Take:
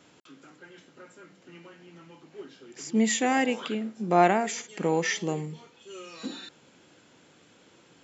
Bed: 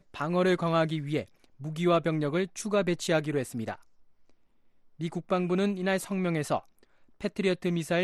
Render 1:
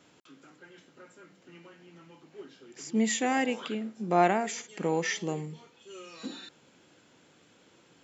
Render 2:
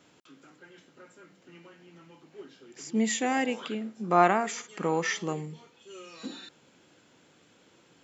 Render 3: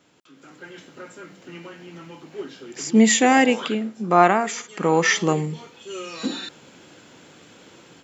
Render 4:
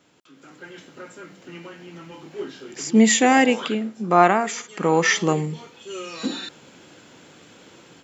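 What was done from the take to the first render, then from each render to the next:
trim -3 dB
4.04–5.33 s: peaking EQ 1.2 kHz +10.5 dB 0.53 oct
level rider gain up to 12.5 dB
2.09–2.74 s: doubling 27 ms -5 dB

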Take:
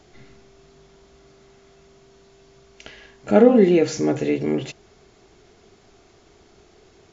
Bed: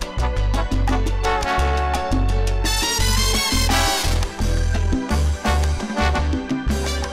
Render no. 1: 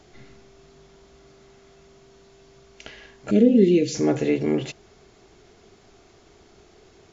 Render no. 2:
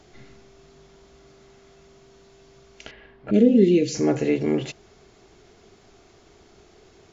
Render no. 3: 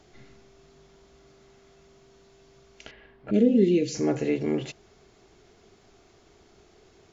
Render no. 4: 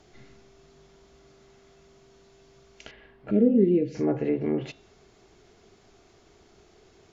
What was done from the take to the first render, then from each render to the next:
3.31–3.95 s: Chebyshev band-stop 350–3000 Hz
2.91–3.34 s: distance through air 390 m; 3.89–4.31 s: band-stop 3.5 kHz, Q 8.3
trim -4 dB
low-pass that closes with the level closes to 1.3 kHz, closed at -21 dBFS; de-hum 272.8 Hz, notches 15

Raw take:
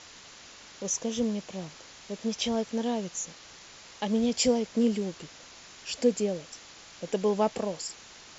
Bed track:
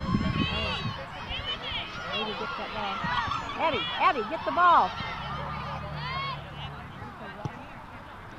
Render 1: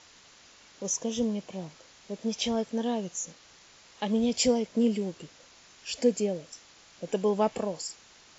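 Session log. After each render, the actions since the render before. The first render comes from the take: noise print and reduce 6 dB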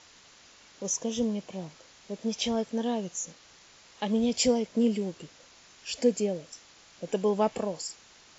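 no audible change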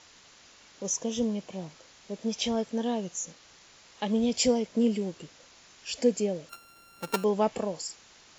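6.49–7.24 s: sorted samples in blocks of 32 samples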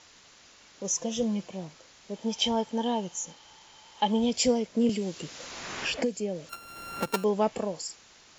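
0.89–1.48 s: comb 5.8 ms; 2.13–4.29 s: small resonant body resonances 880/3100 Hz, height 12 dB -> 15 dB, ringing for 35 ms; 4.89–7.06 s: three bands compressed up and down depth 100%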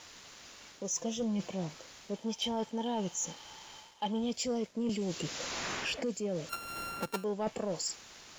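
reverse; compression 5:1, threshold -35 dBFS, peak gain reduction 14.5 dB; reverse; waveshaping leveller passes 1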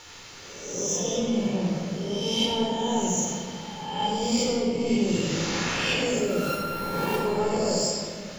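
reverse spectral sustain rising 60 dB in 1.06 s; simulated room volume 3100 m³, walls mixed, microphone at 4.3 m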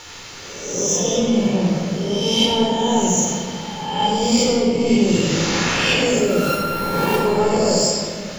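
trim +8 dB

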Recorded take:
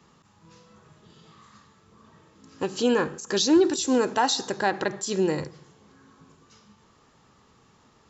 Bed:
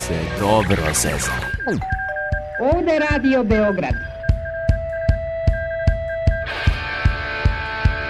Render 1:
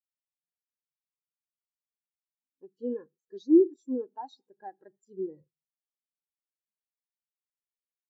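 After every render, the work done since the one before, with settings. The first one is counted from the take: spectral contrast expander 2.5:1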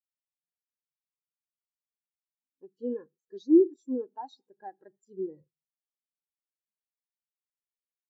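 no audible change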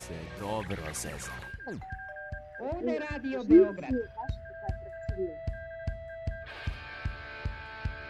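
add bed -18 dB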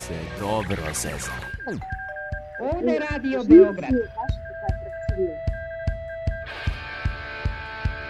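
trim +9 dB; peak limiter -3 dBFS, peak gain reduction 2 dB

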